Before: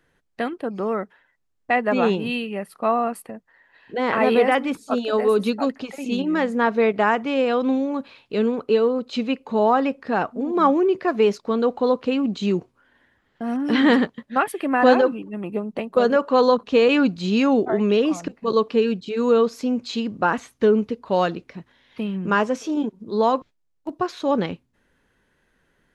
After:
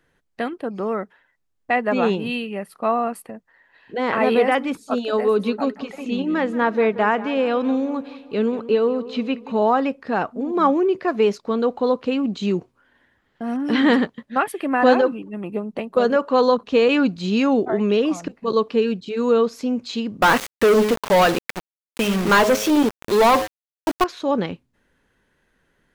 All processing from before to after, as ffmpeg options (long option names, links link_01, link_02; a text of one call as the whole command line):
ffmpeg -i in.wav -filter_complex "[0:a]asettb=1/sr,asplit=3[link_01][link_02][link_03];[link_01]atrim=end=5.264[link_04];[link_02]atrim=start=5.26:end=9.62,asetpts=PTS-STARTPTS,afade=type=in:duration=0.004:curve=qsin,afade=type=out:start_time=4.356:duration=0.004:curve=qsin,acrossover=split=4200[link_05][link_06];[link_06]acompressor=threshold=-52dB:ratio=4:attack=1:release=60[link_07];[link_05][link_07]amix=inputs=2:normalize=0,asplit=2[link_08][link_09];[link_09]adelay=181,lowpass=frequency=3700:poles=1,volume=-15.5dB,asplit=2[link_10][link_11];[link_11]adelay=181,lowpass=frequency=3700:poles=1,volume=0.5,asplit=2[link_12][link_13];[link_13]adelay=181,lowpass=frequency=3700:poles=1,volume=0.5,asplit=2[link_14][link_15];[link_15]adelay=181,lowpass=frequency=3700:poles=1,volume=0.5,asplit=2[link_16][link_17];[link_17]adelay=181,lowpass=frequency=3700:poles=1,volume=0.5[link_18];[link_08][link_10][link_12][link_14][link_16][link_18]amix=inputs=6:normalize=0,atrim=end_sample=192276[link_19];[link_03]atrim=start=9.616[link_20];[link_04][link_19]acrossfade=duration=0.004:curve1=hsin:curve2=qsin[link_21];[link_21][link_20]acrossfade=duration=0.004:curve1=qsin:curve2=hsin,asettb=1/sr,asplit=3[link_22][link_23][link_24];[link_22]atrim=end=20.224[link_25];[link_23]atrim=start=20.22:end=24.04,asetpts=PTS-STARTPTS,afade=type=in:duration=0.004:curve=qsin,afade=type=out:start_time=3.816:duration=0.004:curve=qsin,bandreject=frequency=106.1:width_type=h:width=4,bandreject=frequency=212.2:width_type=h:width=4,bandreject=frequency=318.3:width_type=h:width=4,bandreject=frequency=424.4:width_type=h:width=4,bandreject=frequency=530.5:width_type=h:width=4,bandreject=frequency=636.6:width_type=h:width=4,bandreject=frequency=742.7:width_type=h:width=4,asplit=2[link_26][link_27];[link_27]highpass=frequency=720:poles=1,volume=24dB,asoftclip=type=tanh:threshold=-7.5dB[link_28];[link_26][link_28]amix=inputs=2:normalize=0,lowpass=frequency=4900:poles=1,volume=-6dB,aeval=exprs='val(0)*gte(abs(val(0)),0.075)':channel_layout=same[link_29];[link_24]atrim=start=24.036[link_30];[link_25][link_29]acrossfade=duration=0.004:curve1=hsin:curve2=qsin[link_31];[link_31][link_30]acrossfade=duration=0.004:curve1=qsin:curve2=hsin" out.wav